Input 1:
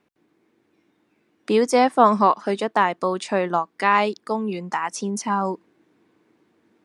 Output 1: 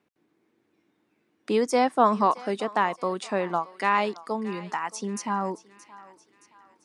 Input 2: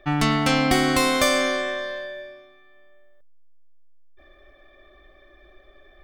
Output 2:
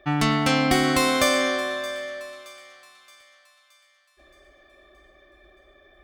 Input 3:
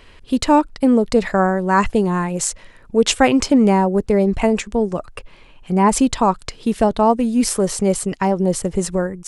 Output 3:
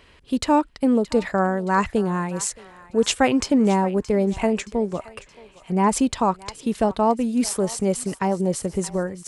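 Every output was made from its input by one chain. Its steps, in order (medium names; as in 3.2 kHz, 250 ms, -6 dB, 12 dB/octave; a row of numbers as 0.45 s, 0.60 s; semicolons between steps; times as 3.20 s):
high-pass 42 Hz; thinning echo 622 ms, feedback 50%, high-pass 850 Hz, level -16.5 dB; peak normalisation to -6 dBFS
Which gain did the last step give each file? -5.0 dB, -0.5 dB, -4.5 dB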